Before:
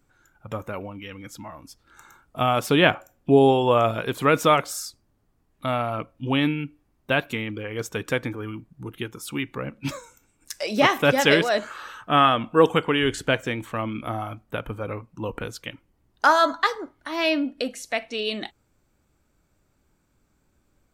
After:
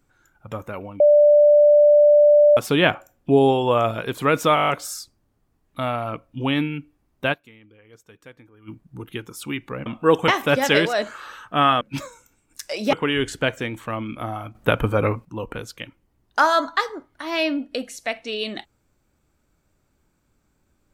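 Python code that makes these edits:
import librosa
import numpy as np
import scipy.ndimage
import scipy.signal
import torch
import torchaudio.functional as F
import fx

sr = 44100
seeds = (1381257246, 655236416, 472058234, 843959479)

y = fx.edit(x, sr, fx.bleep(start_s=1.0, length_s=1.57, hz=590.0, db=-9.5),
    fx.stutter(start_s=4.55, slice_s=0.02, count=8),
    fx.fade_down_up(start_s=7.18, length_s=1.37, db=-20.0, fade_s=0.18, curve='exp'),
    fx.swap(start_s=9.72, length_s=1.12, other_s=12.37, other_length_s=0.42),
    fx.clip_gain(start_s=14.41, length_s=0.7, db=11.0), tone=tone)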